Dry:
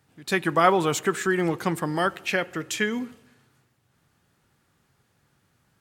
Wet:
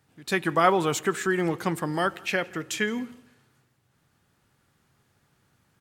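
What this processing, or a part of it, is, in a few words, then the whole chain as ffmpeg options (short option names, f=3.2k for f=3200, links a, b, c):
ducked delay: -filter_complex "[0:a]asplit=3[a][b][c];[b]adelay=168,volume=-4dB[d];[c]apad=whole_len=263623[e];[d][e]sidechaincompress=threshold=-41dB:ratio=8:attack=16:release=1250[f];[a][f]amix=inputs=2:normalize=0,volume=-1.5dB"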